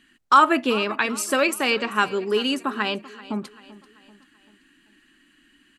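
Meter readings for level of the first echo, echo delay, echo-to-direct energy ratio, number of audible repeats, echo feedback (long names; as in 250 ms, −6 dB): −19.0 dB, 387 ms, −18.0 dB, 3, 48%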